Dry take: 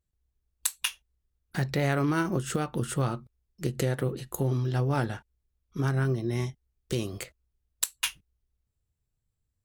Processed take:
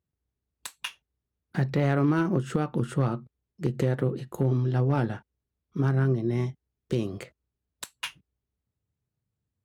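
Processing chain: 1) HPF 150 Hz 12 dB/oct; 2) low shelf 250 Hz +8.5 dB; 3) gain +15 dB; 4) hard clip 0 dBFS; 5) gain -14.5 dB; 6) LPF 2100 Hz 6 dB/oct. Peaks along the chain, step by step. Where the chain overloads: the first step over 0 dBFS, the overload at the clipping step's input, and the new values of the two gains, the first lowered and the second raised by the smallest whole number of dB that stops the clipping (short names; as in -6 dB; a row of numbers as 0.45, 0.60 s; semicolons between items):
-9.0, -9.0, +6.0, 0.0, -14.5, -14.5 dBFS; step 3, 6.0 dB; step 3 +9 dB, step 5 -8.5 dB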